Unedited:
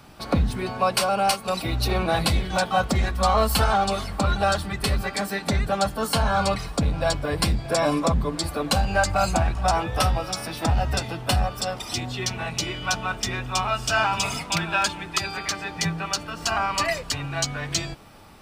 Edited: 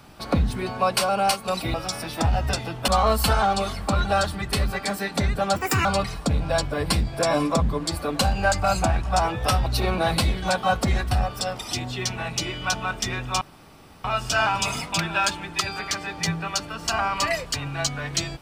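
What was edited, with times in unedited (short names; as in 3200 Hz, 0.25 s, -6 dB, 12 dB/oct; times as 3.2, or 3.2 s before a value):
1.74–3.19 swap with 10.18–11.32
5.87–6.37 speed 171%
13.62 insert room tone 0.63 s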